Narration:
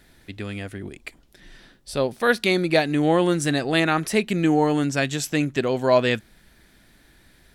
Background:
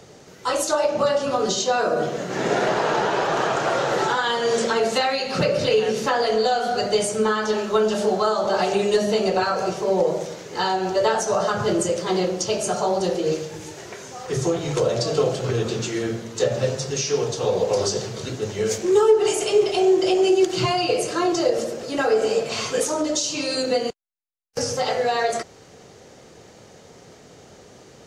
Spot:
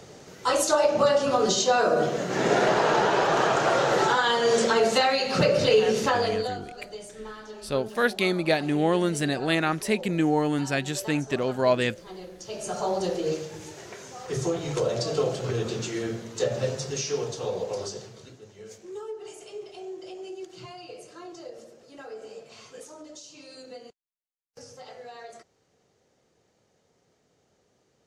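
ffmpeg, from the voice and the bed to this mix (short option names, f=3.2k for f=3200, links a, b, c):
-filter_complex "[0:a]adelay=5750,volume=-4dB[a];[1:a]volume=14dB,afade=t=out:st=5.99:d=0.63:silence=0.112202,afade=t=in:st=12.39:d=0.5:silence=0.188365,afade=t=out:st=16.9:d=1.53:silence=0.149624[b];[a][b]amix=inputs=2:normalize=0"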